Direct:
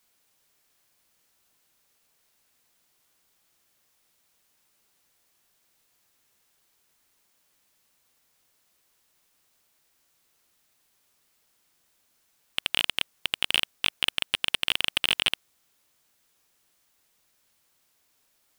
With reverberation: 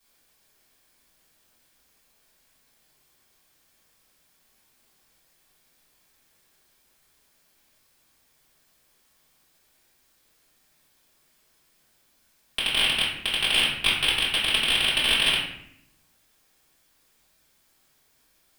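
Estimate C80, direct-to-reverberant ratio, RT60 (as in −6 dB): 5.5 dB, −10.5 dB, 0.70 s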